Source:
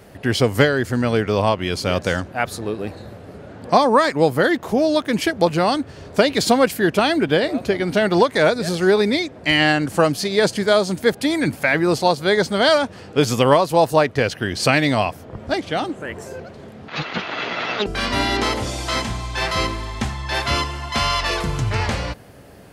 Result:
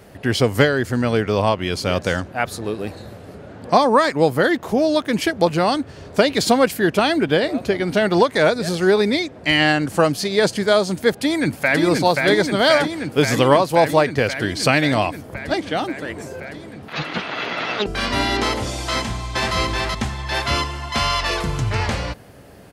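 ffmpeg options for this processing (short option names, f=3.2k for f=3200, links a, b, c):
-filter_complex "[0:a]asettb=1/sr,asplit=3[a][b][c];[a]atrim=end=2.644[d];[b]atrim=start=2.64:end=3.35,asetpts=PTS-STARTPTS,afade=t=in:d=0.004:c=qsin,afade=t=out:st=0.706:d=0.004:c=qsin,highshelf=f=3.9k:g=5.5[e];[c]atrim=start=3.346[f];[d][e]acrossfade=d=0.004:c1=hsin:c2=qsin[g];[g][f]acrossfade=d=0.004:c1=qsin:c2=hsin,asplit=2[h][i];[i]afade=t=in:st=11.12:d=0.01,afade=t=out:st=11.81:d=0.01,aecho=0:1:530|1060|1590|2120|2650|3180|3710|4240|4770|5300|5830|6360:0.707946|0.566357|0.453085|0.362468|0.289975|0.23198|0.185584|0.148467|0.118774|0.0950189|0.0760151|0.0608121[j];[h][j]amix=inputs=2:normalize=0,asplit=2[k][l];[l]afade=t=in:st=18.97:d=0.01,afade=t=out:st=19.56:d=0.01,aecho=0:1:380|760|1140:0.841395|0.126209|0.0189314[m];[k][m]amix=inputs=2:normalize=0"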